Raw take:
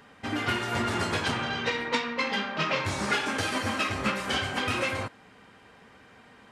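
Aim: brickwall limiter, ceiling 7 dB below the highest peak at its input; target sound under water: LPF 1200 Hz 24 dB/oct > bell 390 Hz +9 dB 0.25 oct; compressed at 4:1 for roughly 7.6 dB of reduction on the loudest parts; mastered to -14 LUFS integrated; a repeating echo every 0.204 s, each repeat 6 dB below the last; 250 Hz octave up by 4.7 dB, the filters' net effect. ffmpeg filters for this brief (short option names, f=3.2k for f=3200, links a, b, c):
-af "equalizer=f=250:t=o:g=4.5,acompressor=threshold=-30dB:ratio=4,alimiter=level_in=1.5dB:limit=-24dB:level=0:latency=1,volume=-1.5dB,lowpass=f=1.2k:w=0.5412,lowpass=f=1.2k:w=1.3066,equalizer=f=390:t=o:w=0.25:g=9,aecho=1:1:204|408|612|816|1020|1224:0.501|0.251|0.125|0.0626|0.0313|0.0157,volume=21dB"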